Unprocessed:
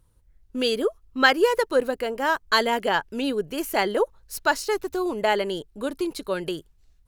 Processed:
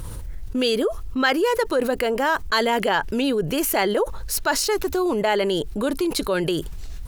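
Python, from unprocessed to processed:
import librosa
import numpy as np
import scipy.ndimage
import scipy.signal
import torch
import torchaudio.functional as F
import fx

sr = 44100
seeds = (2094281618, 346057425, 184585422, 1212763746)

y = fx.env_flatten(x, sr, amount_pct=70)
y = F.gain(torch.from_numpy(y), -4.0).numpy()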